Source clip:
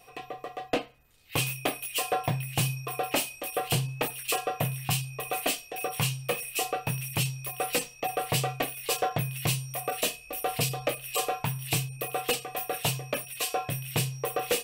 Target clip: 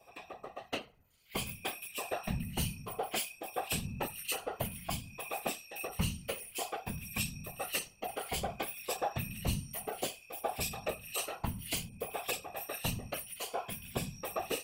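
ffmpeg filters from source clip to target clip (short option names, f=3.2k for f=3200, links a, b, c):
-filter_complex "[0:a]afftfilt=real='re*pow(10,8/40*sin(2*PI*(1.8*log(max(b,1)*sr/1024/100)/log(2)-(0.57)*(pts-256)/sr)))':imag='im*pow(10,8/40*sin(2*PI*(1.8*log(max(b,1)*sr/1024/100)/log(2)-(0.57)*(pts-256)/sr)))':win_size=1024:overlap=0.75,acrossover=split=1200[a][b];[a]aeval=exprs='val(0)*(1-0.5/2+0.5/2*cos(2*PI*2*n/s))':c=same[c];[b]aeval=exprs='val(0)*(1-0.5/2-0.5/2*cos(2*PI*2*n/s))':c=same[d];[c][d]amix=inputs=2:normalize=0,afftfilt=real='hypot(re,im)*cos(2*PI*random(0))':imag='hypot(re,im)*sin(2*PI*random(1))':win_size=512:overlap=0.75"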